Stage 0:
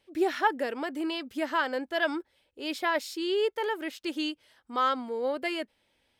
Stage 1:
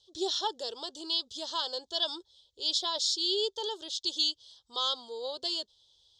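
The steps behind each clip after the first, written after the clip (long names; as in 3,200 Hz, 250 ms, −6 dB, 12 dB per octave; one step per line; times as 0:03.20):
drawn EQ curve 120 Hz 0 dB, 270 Hz −22 dB, 390 Hz −5 dB, 640 Hz −10 dB, 1,000 Hz −6 dB, 2,300 Hz −29 dB, 3,400 Hz +14 dB, 6,900 Hz +12 dB, 14,000 Hz −26 dB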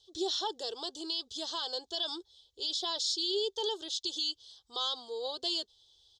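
comb filter 2.6 ms, depth 39%
brickwall limiter −23 dBFS, peak gain reduction 8.5 dB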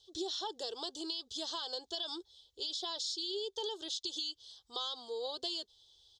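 downward compressor, threshold −35 dBFS, peak gain reduction 7 dB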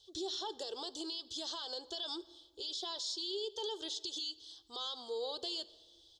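brickwall limiter −31.5 dBFS, peak gain reduction 6.5 dB
on a send at −16 dB: convolution reverb RT60 1.3 s, pre-delay 4 ms
on the sum: level +1 dB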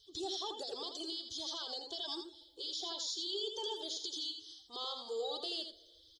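spectral magnitudes quantised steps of 30 dB
on a send: single-tap delay 83 ms −7 dB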